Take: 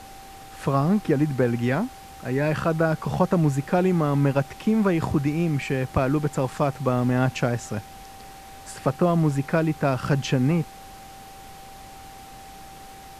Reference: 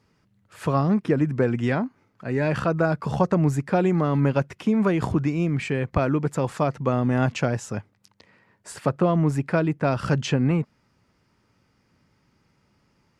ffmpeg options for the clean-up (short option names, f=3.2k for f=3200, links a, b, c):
-af "bandreject=f=780:w=30,afftdn=nr=23:nf=-43"